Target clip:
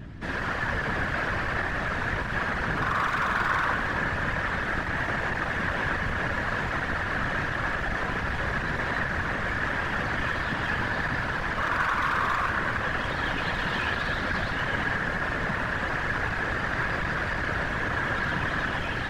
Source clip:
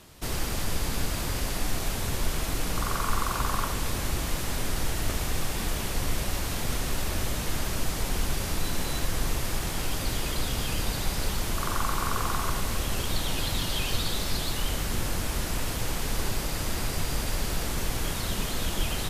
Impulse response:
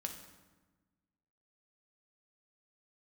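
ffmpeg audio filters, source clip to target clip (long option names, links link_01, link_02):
-filter_complex "[0:a]lowpass=2700[link_01];[1:a]atrim=start_sample=2205[link_02];[link_01][link_02]afir=irnorm=-1:irlink=0,acrossover=split=650|1800[link_03][link_04][link_05];[link_04]dynaudnorm=framelen=150:gausssize=5:maxgain=9dB[link_06];[link_03][link_06][link_05]amix=inputs=3:normalize=0,aeval=exprs='val(0)+0.0112*(sin(2*PI*60*n/s)+sin(2*PI*2*60*n/s)/2+sin(2*PI*3*60*n/s)/3+sin(2*PI*4*60*n/s)/4+sin(2*PI*5*60*n/s)/5)':channel_layout=same,asplit=2[link_07][link_08];[link_08]alimiter=limit=-22.5dB:level=0:latency=1:release=132,volume=-3dB[link_09];[link_07][link_09]amix=inputs=2:normalize=0,volume=21.5dB,asoftclip=hard,volume=-21.5dB,lowshelf=frequency=120:gain=-5,afftfilt=real='hypot(re,im)*cos(2*PI*random(0))':imag='hypot(re,im)*sin(2*PI*random(1))':win_size=512:overlap=0.75,equalizer=frequency=1700:width=3.4:gain=12,bandreject=frequency=870:width=27,volume=4dB"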